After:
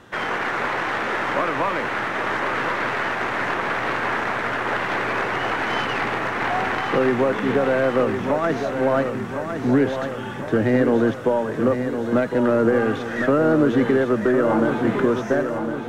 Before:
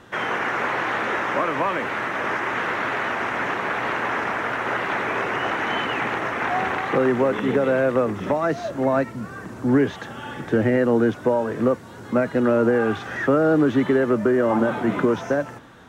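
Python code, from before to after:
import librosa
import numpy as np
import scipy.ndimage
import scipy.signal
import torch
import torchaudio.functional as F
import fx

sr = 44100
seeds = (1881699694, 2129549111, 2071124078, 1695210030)

p1 = fx.tracing_dist(x, sr, depth_ms=0.04)
y = p1 + fx.echo_feedback(p1, sr, ms=1058, feedback_pct=54, wet_db=-7.5, dry=0)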